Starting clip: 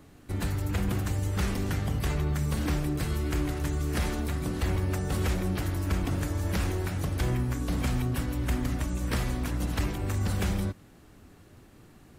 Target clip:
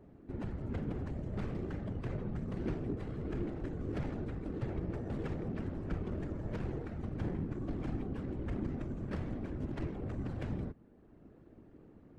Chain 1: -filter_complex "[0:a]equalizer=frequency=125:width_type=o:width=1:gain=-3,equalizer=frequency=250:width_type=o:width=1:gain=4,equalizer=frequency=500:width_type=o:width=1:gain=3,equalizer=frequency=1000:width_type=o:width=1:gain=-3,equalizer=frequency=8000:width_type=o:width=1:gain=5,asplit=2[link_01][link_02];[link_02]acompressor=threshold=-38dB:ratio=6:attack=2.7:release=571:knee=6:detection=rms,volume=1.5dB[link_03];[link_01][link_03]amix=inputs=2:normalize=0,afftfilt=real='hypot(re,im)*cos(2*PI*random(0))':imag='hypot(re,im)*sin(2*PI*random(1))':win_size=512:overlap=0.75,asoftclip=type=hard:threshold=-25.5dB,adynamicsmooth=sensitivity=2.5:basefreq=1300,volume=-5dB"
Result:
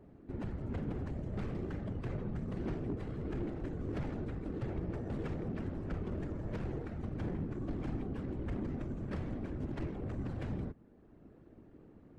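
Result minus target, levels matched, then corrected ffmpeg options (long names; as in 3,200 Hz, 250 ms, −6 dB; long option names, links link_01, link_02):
hard clipping: distortion +34 dB
-filter_complex "[0:a]equalizer=frequency=125:width_type=o:width=1:gain=-3,equalizer=frequency=250:width_type=o:width=1:gain=4,equalizer=frequency=500:width_type=o:width=1:gain=3,equalizer=frequency=1000:width_type=o:width=1:gain=-3,equalizer=frequency=8000:width_type=o:width=1:gain=5,asplit=2[link_01][link_02];[link_02]acompressor=threshold=-38dB:ratio=6:attack=2.7:release=571:knee=6:detection=rms,volume=1.5dB[link_03];[link_01][link_03]amix=inputs=2:normalize=0,afftfilt=real='hypot(re,im)*cos(2*PI*random(0))':imag='hypot(re,im)*sin(2*PI*random(1))':win_size=512:overlap=0.75,asoftclip=type=hard:threshold=-19dB,adynamicsmooth=sensitivity=2.5:basefreq=1300,volume=-5dB"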